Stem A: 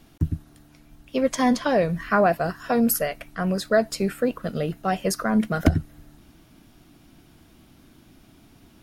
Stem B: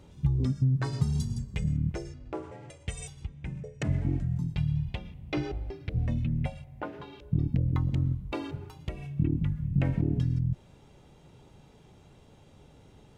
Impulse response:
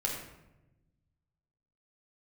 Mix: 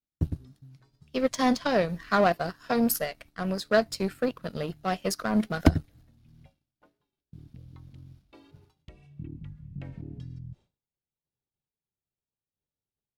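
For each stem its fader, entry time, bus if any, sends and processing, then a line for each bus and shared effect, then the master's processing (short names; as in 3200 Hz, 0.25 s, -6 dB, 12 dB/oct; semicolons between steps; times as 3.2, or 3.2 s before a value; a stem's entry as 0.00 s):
+1.0 dB, 0.00 s, no send, power-law curve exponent 1.4
8.25 s -21 dB -> 8.64 s -13.5 dB, 0.00 s, no send, auto duck -8 dB, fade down 1.10 s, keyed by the first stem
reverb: off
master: wow and flutter 26 cents; bell 4400 Hz +6.5 dB 0.79 oct; expander -50 dBFS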